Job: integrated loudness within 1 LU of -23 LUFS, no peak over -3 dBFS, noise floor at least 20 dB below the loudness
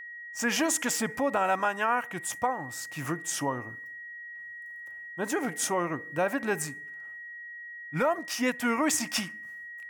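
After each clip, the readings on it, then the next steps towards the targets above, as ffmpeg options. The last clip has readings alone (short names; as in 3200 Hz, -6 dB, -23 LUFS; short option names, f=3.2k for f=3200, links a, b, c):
steady tone 1900 Hz; tone level -40 dBFS; loudness -29.5 LUFS; peak -13.5 dBFS; loudness target -23.0 LUFS
-> -af "bandreject=f=1.9k:w=30"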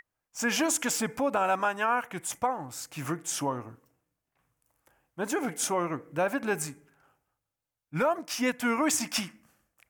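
steady tone none; loudness -29.5 LUFS; peak -14.0 dBFS; loudness target -23.0 LUFS
-> -af "volume=6.5dB"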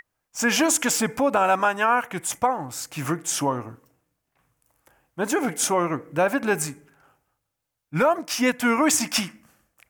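loudness -23.0 LUFS; peak -7.5 dBFS; noise floor -80 dBFS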